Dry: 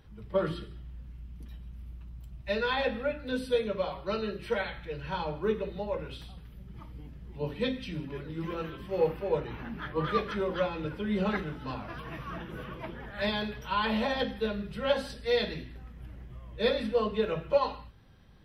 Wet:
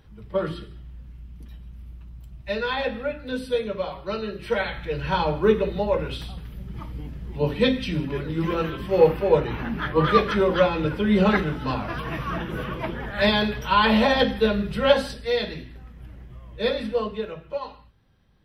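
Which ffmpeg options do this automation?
-af "volume=10.5dB,afade=t=in:st=4.32:d=0.72:silence=0.421697,afade=t=out:st=14.83:d=0.5:silence=0.421697,afade=t=out:st=16.94:d=0.42:silence=0.398107"

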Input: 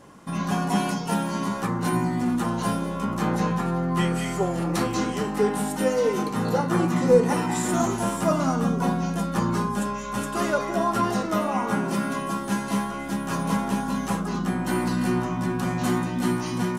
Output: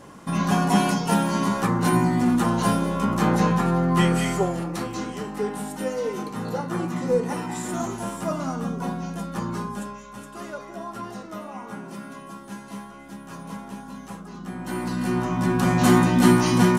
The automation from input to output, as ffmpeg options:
-af "volume=24dB,afade=t=out:st=4.26:d=0.45:silence=0.354813,afade=t=out:st=9.71:d=0.42:silence=0.473151,afade=t=in:st=14.37:d=0.73:silence=0.298538,afade=t=in:st=15.1:d=0.96:silence=0.334965"

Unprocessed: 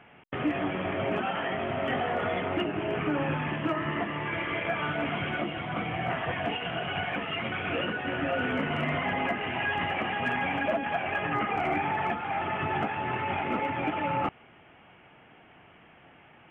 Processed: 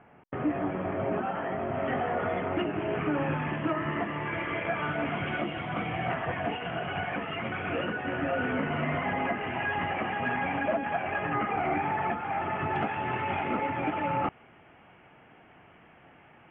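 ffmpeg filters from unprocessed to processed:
-af "asetnsamples=n=441:p=0,asendcmd='1.74 lowpass f 1900;2.57 lowpass f 2500;5.27 lowpass f 3500;6.14 lowpass f 2200;12.76 lowpass f 3500;13.51 lowpass f 2600',lowpass=1.4k"

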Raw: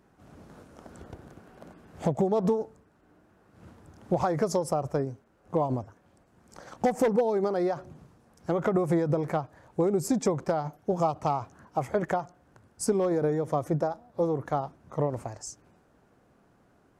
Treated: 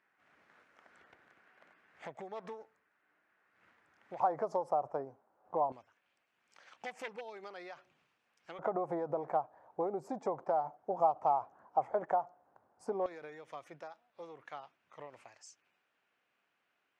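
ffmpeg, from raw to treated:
-af "asetnsamples=n=441:p=0,asendcmd='4.2 bandpass f 820;5.72 bandpass f 2600;8.59 bandpass f 790;13.06 bandpass f 2600',bandpass=f=2k:t=q:w=2.4:csg=0"

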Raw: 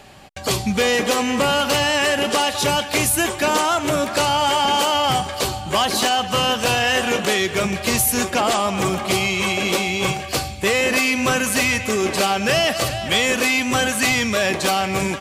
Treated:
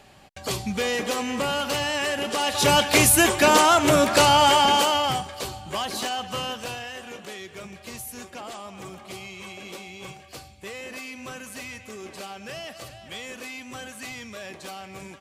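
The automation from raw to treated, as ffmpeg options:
-af "volume=2dB,afade=t=in:st=2.37:d=0.42:silence=0.334965,afade=t=out:st=4.4:d=0.88:silence=0.251189,afade=t=out:st=6.32:d=0.6:silence=0.354813"

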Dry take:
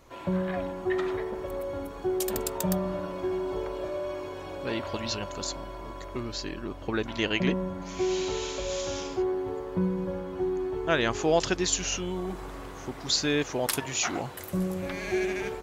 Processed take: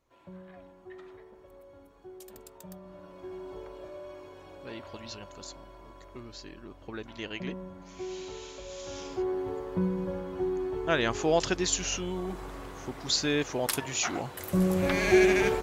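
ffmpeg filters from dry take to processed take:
-af "volume=7.5dB,afade=t=in:st=2.81:d=0.64:silence=0.375837,afade=t=in:st=8.76:d=0.63:silence=0.354813,afade=t=in:st=14.33:d=0.6:silence=0.354813"

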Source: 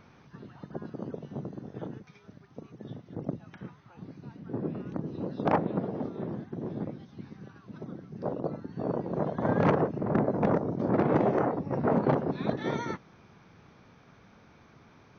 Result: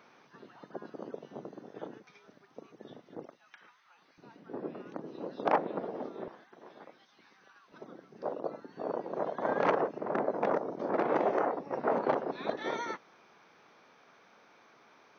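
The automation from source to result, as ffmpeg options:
-af "asetnsamples=n=441:p=0,asendcmd='3.26 highpass f 1300;4.18 highpass f 410;6.28 highpass f 1000;7.72 highpass f 450',highpass=380"

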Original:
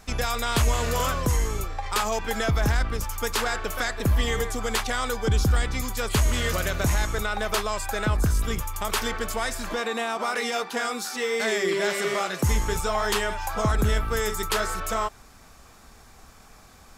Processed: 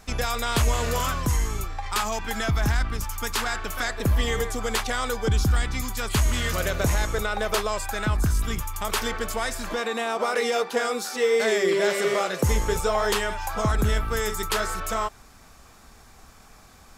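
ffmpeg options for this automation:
-af "asetnsamples=n=441:p=0,asendcmd='0.99 equalizer g -8;3.83 equalizer g 1;5.3 equalizer g -5.5;6.57 equalizer g 5;7.86 equalizer g -6;8.83 equalizer g 1;10.06 equalizer g 8;13.14 equalizer g -1',equalizer=f=500:t=o:w=0.58:g=0.5"

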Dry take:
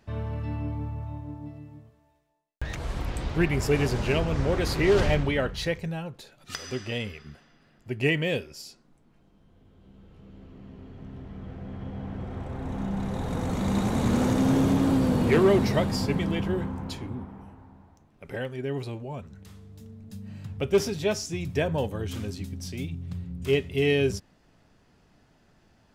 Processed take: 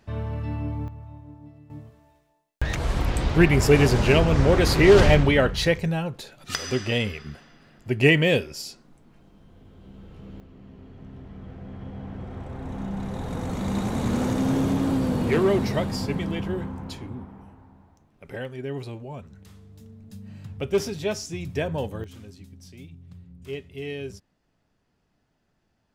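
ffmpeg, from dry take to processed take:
-af "asetnsamples=n=441:p=0,asendcmd='0.88 volume volume -6dB;1.7 volume volume 7dB;10.4 volume volume -1dB;22.04 volume volume -10.5dB',volume=2dB"

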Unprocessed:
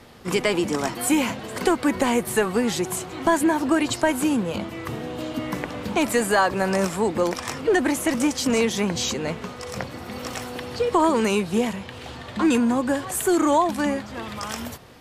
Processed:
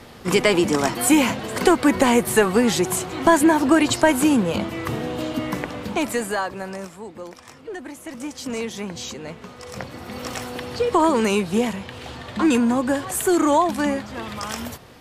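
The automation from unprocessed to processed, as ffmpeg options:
-af "volume=20dB,afade=t=out:st=5.05:d=1.4:silence=0.281838,afade=t=out:st=6.45:d=0.51:silence=0.421697,afade=t=in:st=8.01:d=0.53:silence=0.446684,afade=t=in:st=9.36:d=0.95:silence=0.375837"

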